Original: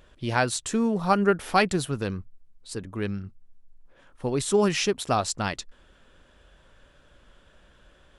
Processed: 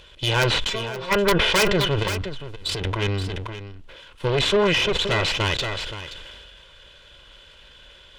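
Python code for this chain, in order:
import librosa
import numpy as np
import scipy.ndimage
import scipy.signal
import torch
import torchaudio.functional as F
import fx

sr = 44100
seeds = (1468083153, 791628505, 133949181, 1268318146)

y = fx.lower_of_two(x, sr, delay_ms=2.0)
y = fx.overload_stage(y, sr, gain_db=23.5, at=(4.67, 5.34))
y = fx.peak_eq(y, sr, hz=3200.0, db=14.5, octaves=1.1)
y = fx.over_compress(y, sr, threshold_db=-40.0, ratio=-1.0, at=(2.02, 2.94), fade=0.02)
y = fx.env_lowpass_down(y, sr, base_hz=2200.0, full_db=-20.5)
y = fx.stiff_resonator(y, sr, f0_hz=130.0, decay_s=0.25, stiffness=0.002, at=(0.69, 1.11), fade=0.02)
y = (np.mod(10.0 ** (11.0 / 20.0) * y + 1.0, 2.0) - 1.0) / 10.0 ** (11.0 / 20.0)
y = fx.tube_stage(y, sr, drive_db=21.0, bias=0.55)
y = y + 10.0 ** (-14.5 / 20.0) * np.pad(y, (int(525 * sr / 1000.0), 0))[:len(y)]
y = fx.sustainer(y, sr, db_per_s=24.0)
y = y * 10.0 ** (7.0 / 20.0)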